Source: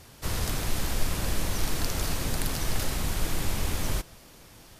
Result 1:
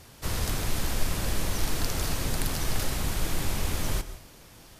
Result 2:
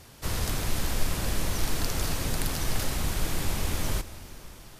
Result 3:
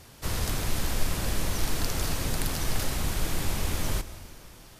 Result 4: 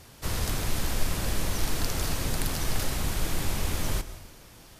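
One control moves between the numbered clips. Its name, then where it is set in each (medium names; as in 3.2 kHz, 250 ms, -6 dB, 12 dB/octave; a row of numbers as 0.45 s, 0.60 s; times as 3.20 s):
plate-style reverb, RT60: 0.53 s, 4.9 s, 2.3 s, 1.1 s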